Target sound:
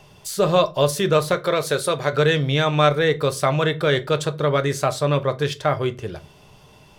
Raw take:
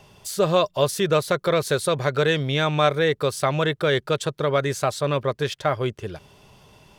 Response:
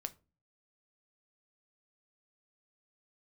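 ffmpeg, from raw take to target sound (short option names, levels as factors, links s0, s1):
-filter_complex "[0:a]asettb=1/sr,asplit=3[s0][s1][s2];[s0]atrim=end=1.344[s3];[s1]atrim=start=1.34:end=2.13,asetpts=PTS-STARTPTS,afade=t=in:d=0.004:c=qsin,afade=t=out:st=0.786:d=0.004:c=qsin,lowshelf=f=180:g=-9.5[s4];[s2]atrim=start=2.126[s5];[s3][s4]acrossfade=d=0.004:c1=hsin:c2=qsin[s6];[s6][s5]acrossfade=d=0.004:c1=qsin:c2=hsin[s7];[1:a]atrim=start_sample=2205[s8];[s7][s8]afir=irnorm=-1:irlink=0,volume=1.58"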